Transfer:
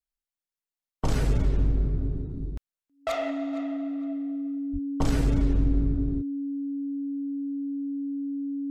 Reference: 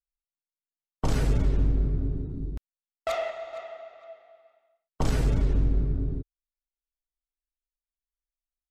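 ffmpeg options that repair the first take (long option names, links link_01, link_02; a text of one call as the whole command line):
ffmpeg -i in.wav -filter_complex "[0:a]bandreject=frequency=280:width=30,asplit=3[link_01][link_02][link_03];[link_01]afade=type=out:start_time=4.72:duration=0.02[link_04];[link_02]highpass=frequency=140:width=0.5412,highpass=frequency=140:width=1.3066,afade=type=in:start_time=4.72:duration=0.02,afade=type=out:start_time=4.84:duration=0.02[link_05];[link_03]afade=type=in:start_time=4.84:duration=0.02[link_06];[link_04][link_05][link_06]amix=inputs=3:normalize=0,asplit=3[link_07][link_08][link_09];[link_07]afade=type=out:start_time=5.83:duration=0.02[link_10];[link_08]highpass=frequency=140:width=0.5412,highpass=frequency=140:width=1.3066,afade=type=in:start_time=5.83:duration=0.02,afade=type=out:start_time=5.95:duration=0.02[link_11];[link_09]afade=type=in:start_time=5.95:duration=0.02[link_12];[link_10][link_11][link_12]amix=inputs=3:normalize=0" out.wav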